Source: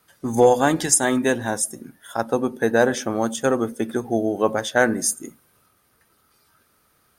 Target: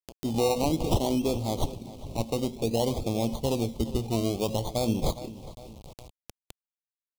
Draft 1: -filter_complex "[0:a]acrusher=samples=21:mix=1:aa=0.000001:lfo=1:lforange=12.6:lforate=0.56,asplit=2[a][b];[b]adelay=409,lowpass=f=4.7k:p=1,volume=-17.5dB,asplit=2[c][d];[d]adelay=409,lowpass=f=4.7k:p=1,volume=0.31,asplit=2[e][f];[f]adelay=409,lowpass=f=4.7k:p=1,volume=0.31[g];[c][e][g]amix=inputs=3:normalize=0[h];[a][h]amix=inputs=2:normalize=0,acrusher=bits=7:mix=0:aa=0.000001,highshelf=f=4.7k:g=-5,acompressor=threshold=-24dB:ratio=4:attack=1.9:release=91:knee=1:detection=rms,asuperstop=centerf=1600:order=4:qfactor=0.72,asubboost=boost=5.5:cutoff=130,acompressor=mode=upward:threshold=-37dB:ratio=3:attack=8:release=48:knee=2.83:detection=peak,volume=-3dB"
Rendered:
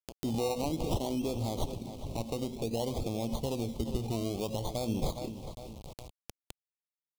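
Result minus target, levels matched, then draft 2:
compressor: peak gain reduction +7 dB
-filter_complex "[0:a]acrusher=samples=21:mix=1:aa=0.000001:lfo=1:lforange=12.6:lforate=0.56,asplit=2[a][b];[b]adelay=409,lowpass=f=4.7k:p=1,volume=-17.5dB,asplit=2[c][d];[d]adelay=409,lowpass=f=4.7k:p=1,volume=0.31,asplit=2[e][f];[f]adelay=409,lowpass=f=4.7k:p=1,volume=0.31[g];[c][e][g]amix=inputs=3:normalize=0[h];[a][h]amix=inputs=2:normalize=0,acrusher=bits=7:mix=0:aa=0.000001,highshelf=f=4.7k:g=-5,acompressor=threshold=-14.5dB:ratio=4:attack=1.9:release=91:knee=1:detection=rms,asuperstop=centerf=1600:order=4:qfactor=0.72,asubboost=boost=5.5:cutoff=130,acompressor=mode=upward:threshold=-37dB:ratio=3:attack=8:release=48:knee=2.83:detection=peak,volume=-3dB"

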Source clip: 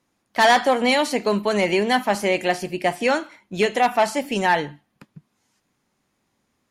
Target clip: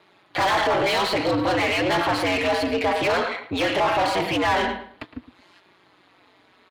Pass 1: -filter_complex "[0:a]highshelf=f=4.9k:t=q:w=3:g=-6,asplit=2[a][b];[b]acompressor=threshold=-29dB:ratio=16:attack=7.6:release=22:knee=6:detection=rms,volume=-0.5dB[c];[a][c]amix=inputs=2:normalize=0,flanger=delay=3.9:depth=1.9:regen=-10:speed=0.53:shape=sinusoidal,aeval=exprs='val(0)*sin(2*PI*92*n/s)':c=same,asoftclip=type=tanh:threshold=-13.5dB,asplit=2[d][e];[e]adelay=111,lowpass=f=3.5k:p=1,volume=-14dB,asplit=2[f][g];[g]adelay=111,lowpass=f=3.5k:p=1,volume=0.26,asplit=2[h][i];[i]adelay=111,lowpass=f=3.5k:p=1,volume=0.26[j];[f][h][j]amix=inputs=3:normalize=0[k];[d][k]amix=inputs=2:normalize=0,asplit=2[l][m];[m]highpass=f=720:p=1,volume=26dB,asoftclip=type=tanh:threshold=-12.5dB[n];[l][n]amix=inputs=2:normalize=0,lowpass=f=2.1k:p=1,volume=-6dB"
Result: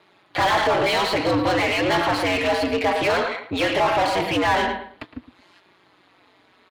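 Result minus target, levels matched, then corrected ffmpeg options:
soft clip: distortion -10 dB
-filter_complex "[0:a]highshelf=f=4.9k:t=q:w=3:g=-6,asplit=2[a][b];[b]acompressor=threshold=-29dB:ratio=16:attack=7.6:release=22:knee=6:detection=rms,volume=-0.5dB[c];[a][c]amix=inputs=2:normalize=0,flanger=delay=3.9:depth=1.9:regen=-10:speed=0.53:shape=sinusoidal,aeval=exprs='val(0)*sin(2*PI*92*n/s)':c=same,asoftclip=type=tanh:threshold=-24dB,asplit=2[d][e];[e]adelay=111,lowpass=f=3.5k:p=1,volume=-14dB,asplit=2[f][g];[g]adelay=111,lowpass=f=3.5k:p=1,volume=0.26,asplit=2[h][i];[i]adelay=111,lowpass=f=3.5k:p=1,volume=0.26[j];[f][h][j]amix=inputs=3:normalize=0[k];[d][k]amix=inputs=2:normalize=0,asplit=2[l][m];[m]highpass=f=720:p=1,volume=26dB,asoftclip=type=tanh:threshold=-12.5dB[n];[l][n]amix=inputs=2:normalize=0,lowpass=f=2.1k:p=1,volume=-6dB"

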